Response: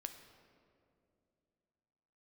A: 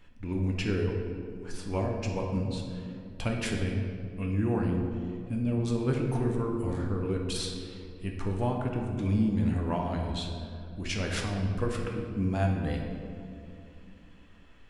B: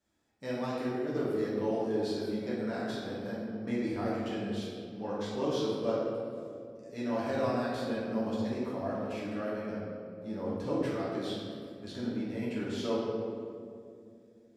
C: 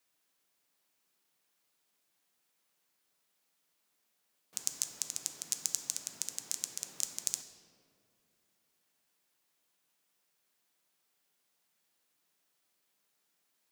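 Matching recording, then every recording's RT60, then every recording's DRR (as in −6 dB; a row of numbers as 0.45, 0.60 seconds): C; 2.5, 2.5, 2.6 seconds; 0.5, −8.5, 6.5 decibels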